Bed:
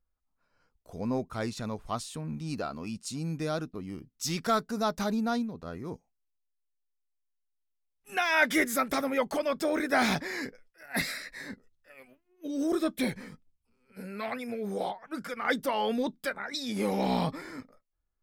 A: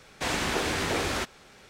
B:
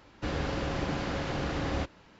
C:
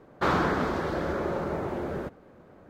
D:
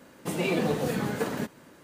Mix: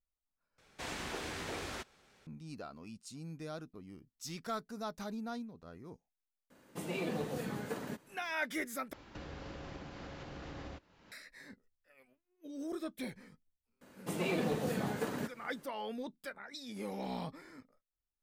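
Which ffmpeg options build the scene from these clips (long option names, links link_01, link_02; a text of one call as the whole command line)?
ffmpeg -i bed.wav -i cue0.wav -i cue1.wav -i cue2.wav -i cue3.wav -filter_complex "[4:a]asplit=2[link_01][link_02];[0:a]volume=-12dB[link_03];[2:a]acompressor=threshold=-39dB:ratio=12:attack=0.26:release=815:knee=1:detection=peak[link_04];[link_02]asoftclip=type=hard:threshold=-19.5dB[link_05];[link_03]asplit=3[link_06][link_07][link_08];[link_06]atrim=end=0.584[link_09];[1:a]atrim=end=1.69,asetpts=PTS-STARTPTS,volume=-13dB[link_10];[link_07]atrim=start=2.266:end=8.934[link_11];[link_04]atrim=end=2.19[link_12];[link_08]atrim=start=11.116[link_13];[link_01]atrim=end=1.83,asetpts=PTS-STARTPTS,volume=-10.5dB,afade=type=in:duration=0.004:curve=hsin,afade=type=out:start_time=1.826:duration=0.004:curve=hsin,adelay=286650S[link_14];[link_05]atrim=end=1.83,asetpts=PTS-STARTPTS,volume=-7dB,afade=type=in:duration=0.004:curve=hsin,afade=type=out:start_time=1.826:duration=0.004:curve=hsin,adelay=13810[link_15];[link_09][link_10]acrossfade=duration=0.004:curve1=hsin:curve2=hsin[link_16];[link_16][link_11]acrossfade=duration=0.004:curve1=hsin:curve2=hsin[link_17];[link_17][link_12]acrossfade=duration=0.004:curve1=hsin:curve2=hsin[link_18];[link_18][link_13]acrossfade=duration=0.004:curve1=hsin:curve2=hsin[link_19];[link_19][link_14][link_15]amix=inputs=3:normalize=0" out.wav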